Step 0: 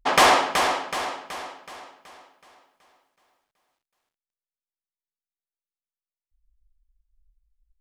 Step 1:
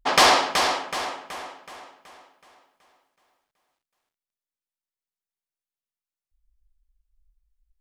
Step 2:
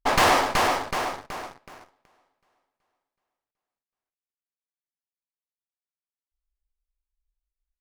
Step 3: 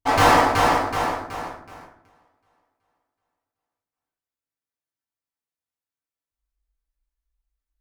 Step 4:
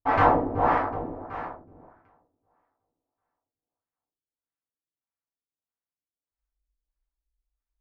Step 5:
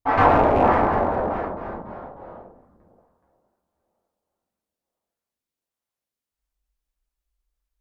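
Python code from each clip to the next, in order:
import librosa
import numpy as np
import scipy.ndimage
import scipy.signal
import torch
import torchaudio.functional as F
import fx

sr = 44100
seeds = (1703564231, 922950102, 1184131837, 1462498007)

y1 = fx.dynamic_eq(x, sr, hz=4700.0, q=1.5, threshold_db=-39.0, ratio=4.0, max_db=7)
y1 = y1 * 10.0 ** (-1.0 / 20.0)
y2 = fx.leveller(y1, sr, passes=3)
y2 = fx.running_max(y2, sr, window=9)
y2 = y2 * 10.0 ** (-8.5 / 20.0)
y3 = fx.rev_fdn(y2, sr, rt60_s=0.68, lf_ratio=1.3, hf_ratio=0.5, size_ms=61.0, drr_db=-7.5)
y3 = y3 * 10.0 ** (-5.0 / 20.0)
y4 = fx.filter_lfo_lowpass(y3, sr, shape='sine', hz=1.6, low_hz=350.0, high_hz=1800.0, q=1.1)
y4 = y4 * 10.0 ** (-4.0 / 20.0)
y5 = fx.rattle_buzz(y4, sr, strikes_db=-29.0, level_db=-28.0)
y5 = fx.echo_pitch(y5, sr, ms=108, semitones=-2, count=3, db_per_echo=-3.0)
y5 = y5 * 10.0 ** (2.5 / 20.0)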